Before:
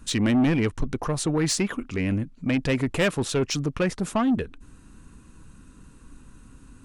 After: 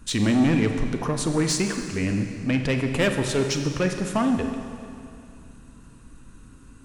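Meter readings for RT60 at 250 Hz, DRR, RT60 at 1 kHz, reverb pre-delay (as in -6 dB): 2.5 s, 5.0 dB, 2.5 s, 29 ms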